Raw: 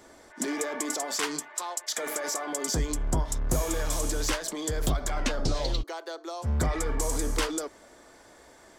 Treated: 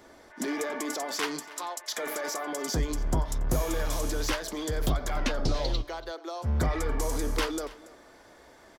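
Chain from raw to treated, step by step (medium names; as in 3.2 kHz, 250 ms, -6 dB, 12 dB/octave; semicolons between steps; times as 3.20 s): peaking EQ 8 kHz -8.5 dB 0.64 oct; on a send: delay 283 ms -19.5 dB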